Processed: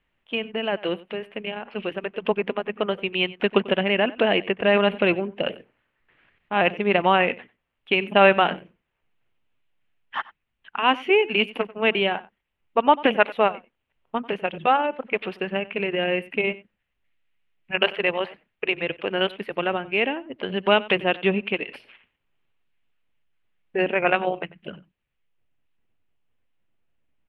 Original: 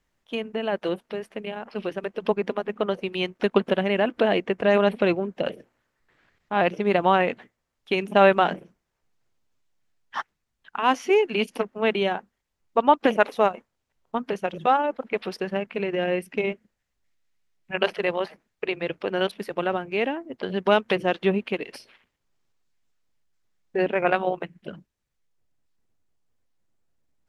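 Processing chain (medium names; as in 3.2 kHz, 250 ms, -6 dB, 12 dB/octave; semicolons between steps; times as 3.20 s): resonant high shelf 4 kHz -12.5 dB, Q 3; on a send: delay 93 ms -20 dB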